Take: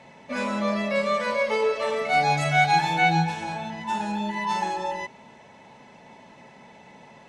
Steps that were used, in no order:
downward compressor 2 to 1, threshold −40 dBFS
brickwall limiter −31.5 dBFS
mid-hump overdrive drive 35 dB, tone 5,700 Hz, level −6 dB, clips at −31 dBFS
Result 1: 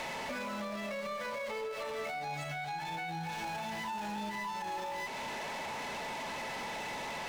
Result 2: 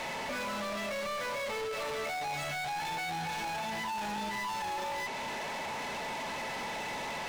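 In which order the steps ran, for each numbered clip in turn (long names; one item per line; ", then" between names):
mid-hump overdrive, then downward compressor, then brickwall limiter
downward compressor, then brickwall limiter, then mid-hump overdrive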